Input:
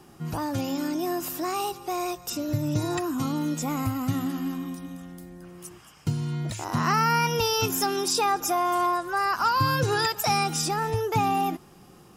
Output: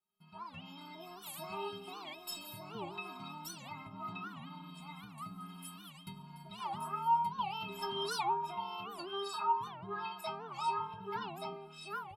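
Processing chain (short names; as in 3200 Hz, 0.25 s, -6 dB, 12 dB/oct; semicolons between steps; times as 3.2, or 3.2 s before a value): in parallel at +2 dB: compressor, threshold -38 dBFS, peak gain reduction 18 dB; on the sum: gate with hold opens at -33 dBFS; high shelf 2400 Hz -8.5 dB; fixed phaser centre 1800 Hz, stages 6; treble ducked by the level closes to 970 Hz, closed at -22 dBFS; doubler 18 ms -11 dB; echo 1.176 s -4 dB; AGC gain up to 14 dB; tilt +3 dB/oct; metallic resonator 190 Hz, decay 0.73 s, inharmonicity 0.03; soft clip -14 dBFS, distortion -34 dB; record warp 78 rpm, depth 250 cents; gain -1.5 dB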